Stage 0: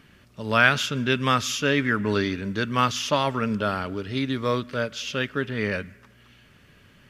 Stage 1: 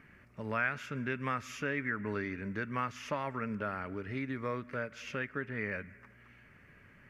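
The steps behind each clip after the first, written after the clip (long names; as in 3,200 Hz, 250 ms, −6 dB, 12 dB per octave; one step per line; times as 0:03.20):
high shelf with overshoot 2,700 Hz −8 dB, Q 3
downward compressor 2 to 1, threshold −32 dBFS, peak gain reduction 12.5 dB
level −5.5 dB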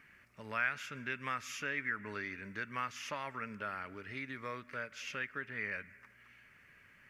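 tilt shelving filter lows −7 dB, about 1,100 Hz
level −3.5 dB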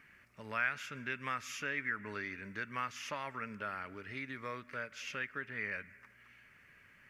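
no processing that can be heard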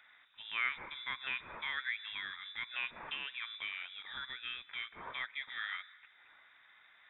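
voice inversion scrambler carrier 3,700 Hz
level −1 dB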